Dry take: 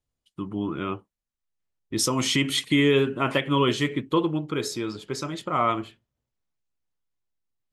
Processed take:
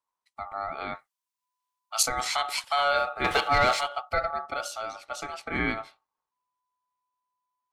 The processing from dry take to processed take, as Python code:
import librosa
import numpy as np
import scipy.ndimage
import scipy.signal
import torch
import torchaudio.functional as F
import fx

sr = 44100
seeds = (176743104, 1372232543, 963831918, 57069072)

y = fx.leveller(x, sr, passes=2, at=(3.24, 3.81))
y = y * np.sin(2.0 * np.pi * 1000.0 * np.arange(len(y)) / sr)
y = fx.tilt_shelf(y, sr, db=-9.5, hz=1300.0, at=(0.95, 2.03))
y = F.gain(torch.from_numpy(y), -2.0).numpy()